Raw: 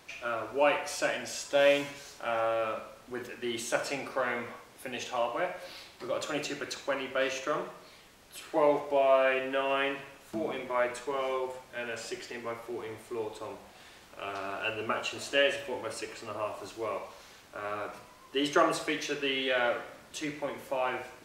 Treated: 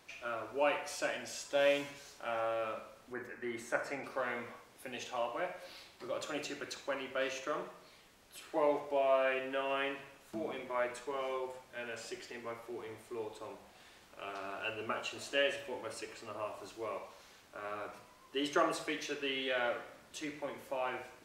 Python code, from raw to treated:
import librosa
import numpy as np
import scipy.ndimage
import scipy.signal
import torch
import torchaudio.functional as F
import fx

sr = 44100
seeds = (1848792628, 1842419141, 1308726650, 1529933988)

y = fx.high_shelf_res(x, sr, hz=2400.0, db=-6.5, q=3.0, at=(3.13, 4.04))
y = fx.hum_notches(y, sr, base_hz=50, count=3)
y = y * 10.0 ** (-6.0 / 20.0)